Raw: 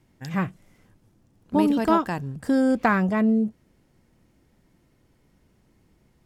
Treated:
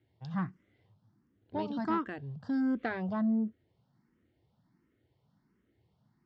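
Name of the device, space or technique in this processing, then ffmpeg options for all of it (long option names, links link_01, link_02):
barber-pole phaser into a guitar amplifier: -filter_complex "[0:a]asplit=2[link_01][link_02];[link_02]afreqshift=1.4[link_03];[link_01][link_03]amix=inputs=2:normalize=1,asoftclip=type=tanh:threshold=-15.5dB,highpass=87,equalizer=frequency=110:width_type=q:width=4:gain=6,equalizer=frequency=540:width_type=q:width=4:gain=-4,equalizer=frequency=2500:width_type=q:width=4:gain=-7,lowpass=frequency=4500:width=0.5412,lowpass=frequency=4500:width=1.3066,volume=-6.5dB"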